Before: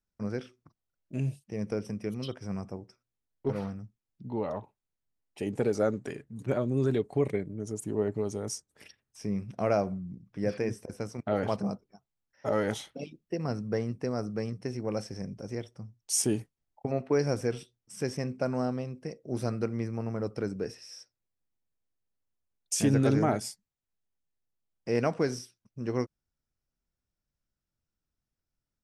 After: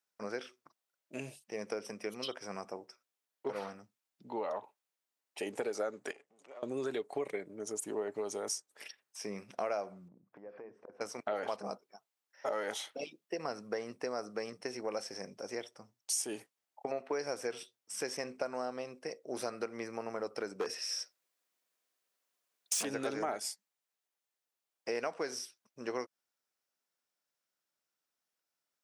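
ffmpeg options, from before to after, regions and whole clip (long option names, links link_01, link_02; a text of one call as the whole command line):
ffmpeg -i in.wav -filter_complex "[0:a]asettb=1/sr,asplit=3[link_01][link_02][link_03];[link_01]atrim=end=6.114[link_04];[link_02]atrim=start=6.11:end=6.63,asetpts=PTS-STARTPTS,afade=type=in:duration=0.004:curve=qsin,afade=type=out:start_time=0.516:duration=0.004:curve=qsin,aeval=exprs='if(lt(val(0),0),0.447*val(0),val(0))':channel_layout=same,acompressor=threshold=-49dB:ratio=3:attack=3.2:release=140:knee=1:detection=peak,highpass=frequency=200:width=0.5412,highpass=frequency=200:width=1.3066,equalizer=frequency=220:width_type=q:width=4:gain=-10,equalizer=frequency=330:width_type=q:width=4:gain=-7,equalizer=frequency=960:width_type=q:width=4:gain=-4,equalizer=frequency=1600:width_type=q:width=4:gain=-8,equalizer=frequency=4000:width_type=q:width=4:gain=-6,lowpass=frequency=8500:width=0.5412,lowpass=frequency=8500:width=1.3066[link_05];[link_03]atrim=start=6.626[link_06];[link_04][link_05]acrossfade=duration=0.004:curve1=hsin:curve2=qsin[link_07];[link_07][link_06]acrossfade=duration=0.004:curve1=qsin:curve2=hsin,asettb=1/sr,asplit=3[link_08][link_09][link_10];[link_08]atrim=end=10.084[link_11];[link_09]atrim=start=10.08:end=11.01,asetpts=PTS-STARTPTS,afade=type=in:duration=0.004:curve=qsin,afade=type=out:start_time=0.926:duration=0.004:curve=qsin,lowpass=1100,acompressor=threshold=-43dB:ratio=8:attack=3.2:release=140:knee=1:detection=peak[link_12];[link_10]atrim=start=11.006[link_13];[link_11][link_12]acrossfade=duration=0.004:curve1=hsin:curve2=qsin[link_14];[link_14][link_13]acrossfade=duration=0.004:curve1=qsin:curve2=hsin,asettb=1/sr,asplit=3[link_15][link_16][link_17];[link_15]atrim=end=20.604[link_18];[link_16]atrim=start=20.6:end=22.85,asetpts=PTS-STARTPTS,afade=type=in:duration=0.004:curve=qsin,afade=type=out:start_time=2.246:duration=0.004:curve=qsin,bandreject=frequency=850:width=8.7,acontrast=69,asoftclip=type=hard:threshold=-23.5dB[link_19];[link_17]atrim=start=22.846[link_20];[link_18][link_19]acrossfade=duration=0.004:curve1=hsin:curve2=qsin[link_21];[link_21][link_20]acrossfade=duration=0.004:curve1=qsin:curve2=hsin,highpass=550,acompressor=threshold=-38dB:ratio=4,volume=4.5dB" out.wav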